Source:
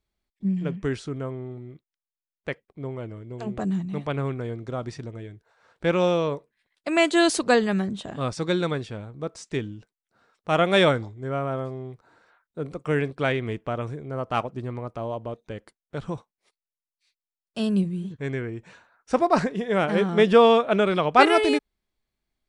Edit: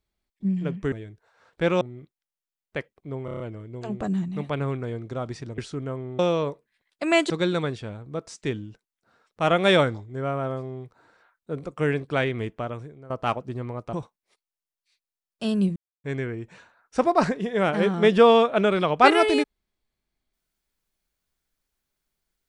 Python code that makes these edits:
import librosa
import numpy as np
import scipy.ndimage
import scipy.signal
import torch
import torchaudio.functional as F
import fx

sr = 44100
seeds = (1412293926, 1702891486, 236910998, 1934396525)

y = fx.edit(x, sr, fx.swap(start_s=0.92, length_s=0.61, other_s=5.15, other_length_s=0.89),
    fx.stutter(start_s=2.97, slice_s=0.03, count=6),
    fx.cut(start_s=7.15, length_s=1.23),
    fx.fade_out_to(start_s=13.56, length_s=0.62, floor_db=-16.5),
    fx.cut(start_s=15.01, length_s=1.07),
    fx.silence(start_s=17.91, length_s=0.28), tone=tone)